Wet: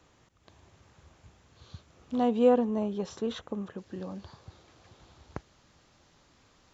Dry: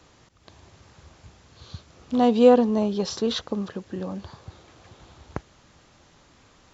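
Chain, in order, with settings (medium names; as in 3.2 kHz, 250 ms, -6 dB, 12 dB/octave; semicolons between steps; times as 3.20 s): peaking EQ 4.7 kHz -4 dB 0.65 oct, from 2.23 s -13.5 dB, from 3.78 s +2 dB; trim -7 dB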